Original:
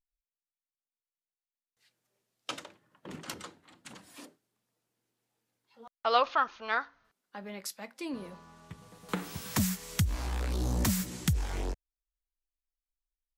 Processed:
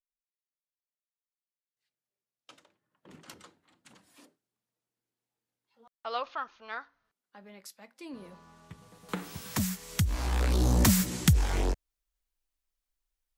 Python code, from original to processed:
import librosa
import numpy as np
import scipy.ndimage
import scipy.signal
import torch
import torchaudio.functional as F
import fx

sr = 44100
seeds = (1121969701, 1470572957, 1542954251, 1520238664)

y = fx.gain(x, sr, db=fx.line((2.59, -17.0), (3.16, -8.5), (7.9, -8.5), (8.46, -1.5), (9.85, -1.5), (10.42, 6.0)))